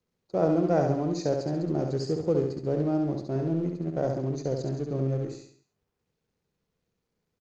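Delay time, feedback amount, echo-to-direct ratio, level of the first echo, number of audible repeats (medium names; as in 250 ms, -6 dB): 68 ms, 43%, -3.5 dB, -4.5 dB, 5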